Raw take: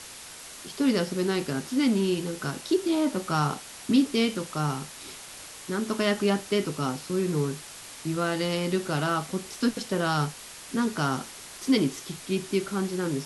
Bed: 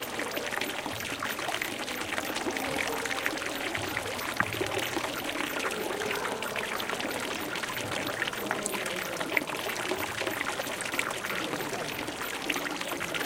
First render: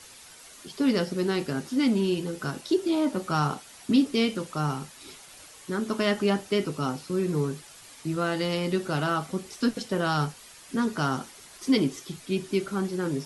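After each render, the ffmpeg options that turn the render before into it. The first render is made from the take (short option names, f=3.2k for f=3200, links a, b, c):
-af "afftdn=nr=8:nf=-44"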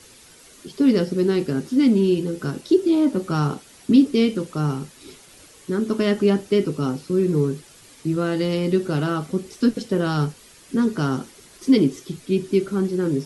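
-af "lowshelf=f=550:t=q:w=1.5:g=6"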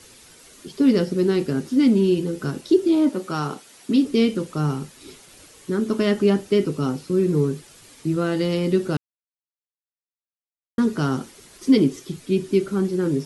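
-filter_complex "[0:a]asettb=1/sr,asplit=3[a][b][c];[a]atrim=end=3.094[d];[b]atrim=start=3.09:end=4.05,asetpts=PTS-STARTPTS,afade=t=in:d=0.004:c=qsin,afade=t=out:st=0.956:d=0.004:c=qsin,highpass=f=340:p=1[e];[c]atrim=start=4.046[f];[d][e]acrossfade=d=0.004:c1=hsin:c2=qsin[g];[g][f]acrossfade=d=0.004:c1=qsin:c2=hsin,asplit=3[h][i][j];[h]atrim=end=8.97,asetpts=PTS-STARTPTS,afade=t=out:st=8.966:d=0.004:c=hsin[k];[i]atrim=start=8.97:end=10.78,asetpts=PTS-STARTPTS,volume=0[l];[j]atrim=start=10.78,asetpts=PTS-STARTPTS,afade=t=in:d=0.004:c=hsin[m];[k][l][m]concat=n=3:v=0:a=1"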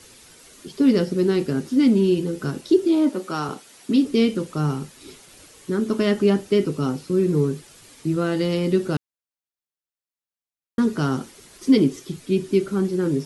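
-filter_complex "[0:a]asettb=1/sr,asplit=3[a][b][c];[a]atrim=end=2.854[d];[b]atrim=start=2.85:end=3.49,asetpts=PTS-STARTPTS,afade=t=in:d=0.004:c=qsin,afade=t=out:st=0.636:d=0.004:c=qsin,highpass=180[e];[c]atrim=start=3.486[f];[d][e]acrossfade=d=0.004:c1=hsin:c2=qsin[g];[g][f]acrossfade=d=0.004:c1=qsin:c2=hsin"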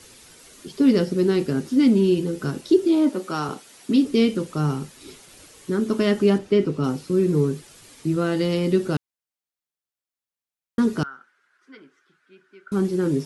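-filter_complex "[0:a]asettb=1/sr,asplit=3[a][b][c];[a]atrim=end=6.384[d];[b]atrim=start=6.38:end=6.84,asetpts=PTS-STARTPTS,afade=t=in:d=0.004:c=qsin,afade=t=out:st=0.456:d=0.004:c=qsin,aemphasis=mode=reproduction:type=50fm[e];[c]atrim=start=6.836[f];[d][e]acrossfade=d=0.004:c1=hsin:c2=qsin[g];[g][f]acrossfade=d=0.004:c1=qsin:c2=hsin,asettb=1/sr,asplit=3[h][i][j];[h]atrim=end=11.034[k];[i]atrim=start=11.03:end=12.72,asetpts=PTS-STARTPTS,afade=t=in:d=0.004:c=qsin,afade=t=out:st=1.686:d=0.004:c=qsin,bandpass=f=1.5k:t=q:w=8.7[l];[j]atrim=start=12.716[m];[k][l]acrossfade=d=0.004:c1=hsin:c2=qsin[n];[n][m]acrossfade=d=0.004:c1=qsin:c2=hsin"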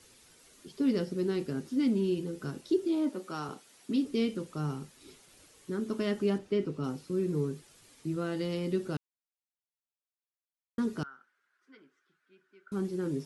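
-af "volume=-11dB"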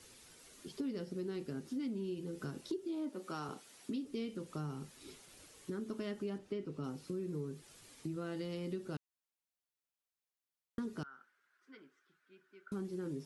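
-af "acompressor=threshold=-39dB:ratio=4"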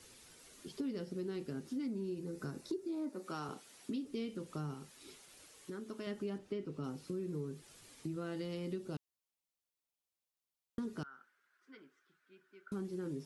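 -filter_complex "[0:a]asettb=1/sr,asplit=3[a][b][c];[a]atrim=end=1.824[d];[b]atrim=start=1.82:end=3.26,asetpts=PTS-STARTPTS,afade=t=in:d=0.004:c=qsin,afade=t=out:st=1.436:d=0.004:c=qsin,equalizer=f=3.1k:t=o:w=0.31:g=-11[e];[c]atrim=start=3.256[f];[d][e]acrossfade=d=0.004:c1=hsin:c2=qsin[g];[g][f]acrossfade=d=0.004:c1=qsin:c2=hsin,asettb=1/sr,asplit=3[h][i][j];[h]atrim=end=4.744[k];[i]atrim=start=4.74:end=6.07,asetpts=PTS-STARTPTS,afade=t=in:d=0.004:c=qsin,afade=t=out:st=1.326:d=0.004:c=qsin,lowshelf=f=320:g=-7.5[l];[j]atrim=start=6.066[m];[k][l]acrossfade=d=0.004:c1=hsin:c2=qsin[n];[n][m]acrossfade=d=0.004:c1=qsin:c2=hsin,asettb=1/sr,asplit=3[o][p][q];[o]atrim=end=8.784[r];[p]atrim=start=8.78:end=10.83,asetpts=PTS-STARTPTS,afade=t=in:d=0.004:c=qsin,afade=t=out:st=2.046:d=0.004:c=qsin,equalizer=f=1.6k:t=o:w=0.77:g=-6[s];[q]atrim=start=10.826[t];[r][s]acrossfade=d=0.004:c1=hsin:c2=qsin[u];[u][t]acrossfade=d=0.004:c1=qsin:c2=hsin"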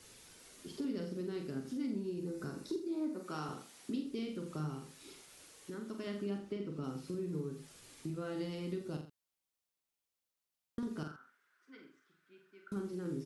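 -filter_complex "[0:a]asplit=2[a][b];[b]adelay=45,volume=-5.5dB[c];[a][c]amix=inputs=2:normalize=0,asplit=2[d][e];[e]aecho=0:1:84:0.282[f];[d][f]amix=inputs=2:normalize=0"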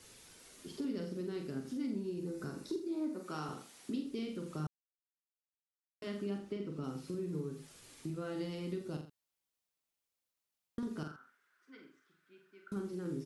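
-filter_complex "[0:a]asplit=3[a][b][c];[a]atrim=end=4.67,asetpts=PTS-STARTPTS,afade=t=out:st=4.666:d=0.004:c=hsin[d];[b]atrim=start=4.67:end=6.02,asetpts=PTS-STARTPTS,volume=0[e];[c]atrim=start=6.02,asetpts=PTS-STARTPTS,afade=t=in:d=0.004:c=hsin[f];[d][e][f]concat=n=3:v=0:a=1"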